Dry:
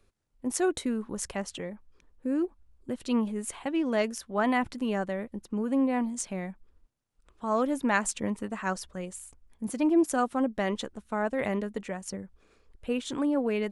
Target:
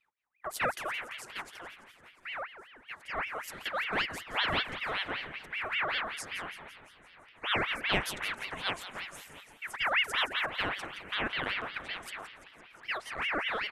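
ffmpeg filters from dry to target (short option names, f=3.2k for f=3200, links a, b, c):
-filter_complex "[0:a]equalizer=f=250:t=o:w=0.67:g=-3,equalizer=f=1k:t=o:w=0.67:g=5,equalizer=f=4k:t=o:w=0.67:g=-11,equalizer=f=10k:t=o:w=0.67:g=-4,aecho=1:1:699|1398|2097|2796:0.0891|0.0437|0.0214|0.0105,agate=range=-7dB:threshold=-53dB:ratio=16:detection=peak,asettb=1/sr,asplit=3[a][b][c];[a]atrim=end=1.134[d];[b]atrim=start=1.13:end=3.18,asetpts=PTS-STARTPTS,afade=t=in:d=0.004:c=qsin,afade=t=out:st=2.046:d=0.004:c=qsin,flanger=delay=1.1:depth=4.3:regen=84:speed=1.6:shape=sinusoidal[e];[c]atrim=start=3.176[f];[d][e]acrossfade=d=0.004:c1=hsin:c2=qsin[g];[g][f]acrossfade=d=0.004:c1=qsin:c2=hsin,asplit=8[h][i][j][k][l][m][n][o];[i]adelay=169,afreqshift=130,volume=-12.5dB[p];[j]adelay=338,afreqshift=260,volume=-16.9dB[q];[k]adelay=507,afreqshift=390,volume=-21.4dB[r];[l]adelay=676,afreqshift=520,volume=-25.8dB[s];[m]adelay=845,afreqshift=650,volume=-30.2dB[t];[n]adelay=1014,afreqshift=780,volume=-34.7dB[u];[o]adelay=1183,afreqshift=910,volume=-39.1dB[v];[h][p][q][r][s][t][u][v]amix=inputs=8:normalize=0,aeval=exprs='val(0)*sin(2*PI*1700*n/s+1700*0.5/5.2*sin(2*PI*5.2*n/s))':c=same,volume=-2dB"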